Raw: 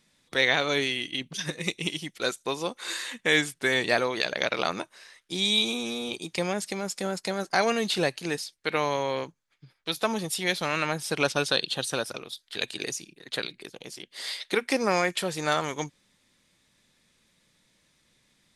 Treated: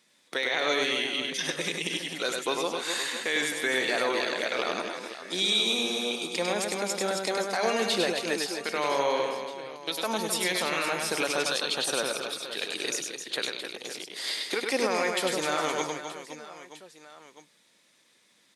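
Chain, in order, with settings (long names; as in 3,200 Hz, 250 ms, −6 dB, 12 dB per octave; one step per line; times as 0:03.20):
high-pass filter 290 Hz 12 dB per octave
brickwall limiter −18.5 dBFS, peak gain reduction 10.5 dB
on a send: reverse bouncing-ball delay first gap 100 ms, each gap 1.6×, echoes 5
on the sum: level +1.5 dB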